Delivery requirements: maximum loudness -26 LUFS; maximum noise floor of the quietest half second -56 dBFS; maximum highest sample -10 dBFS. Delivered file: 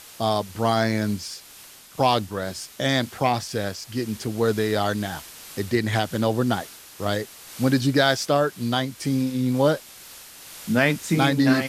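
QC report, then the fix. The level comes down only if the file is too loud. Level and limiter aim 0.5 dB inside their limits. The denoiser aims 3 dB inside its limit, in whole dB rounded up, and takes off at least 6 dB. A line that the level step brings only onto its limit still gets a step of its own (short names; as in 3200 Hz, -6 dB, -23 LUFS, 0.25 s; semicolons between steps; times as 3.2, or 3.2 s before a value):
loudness -23.5 LUFS: fail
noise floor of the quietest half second -46 dBFS: fail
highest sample -4.5 dBFS: fail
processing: denoiser 10 dB, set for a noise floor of -46 dBFS; gain -3 dB; limiter -10.5 dBFS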